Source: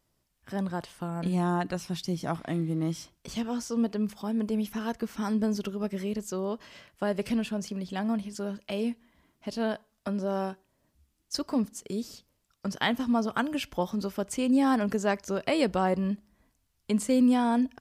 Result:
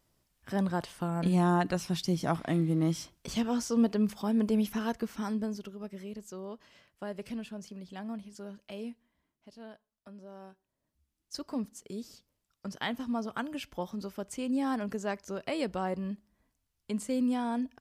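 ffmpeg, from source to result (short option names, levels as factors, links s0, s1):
-af "volume=4.47,afade=t=out:st=4.62:d=1.01:silence=0.266073,afade=t=out:st=8.83:d=0.67:silence=0.375837,afade=t=in:st=10.4:d=1.14:silence=0.266073"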